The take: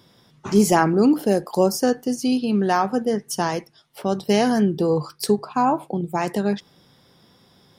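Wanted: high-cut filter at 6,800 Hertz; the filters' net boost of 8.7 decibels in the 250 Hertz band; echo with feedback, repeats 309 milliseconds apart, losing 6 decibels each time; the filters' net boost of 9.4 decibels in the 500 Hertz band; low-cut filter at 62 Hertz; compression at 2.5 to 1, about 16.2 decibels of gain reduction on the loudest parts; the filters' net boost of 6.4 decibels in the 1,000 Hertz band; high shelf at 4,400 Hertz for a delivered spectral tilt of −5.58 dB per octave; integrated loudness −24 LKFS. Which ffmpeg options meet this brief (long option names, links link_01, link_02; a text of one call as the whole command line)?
ffmpeg -i in.wav -af "highpass=62,lowpass=6800,equalizer=frequency=250:width_type=o:gain=8.5,equalizer=frequency=500:width_type=o:gain=8,equalizer=frequency=1000:width_type=o:gain=4.5,highshelf=frequency=4400:gain=-4,acompressor=threshold=-28dB:ratio=2.5,aecho=1:1:309|618|927|1236|1545|1854:0.501|0.251|0.125|0.0626|0.0313|0.0157,volume=1.5dB" out.wav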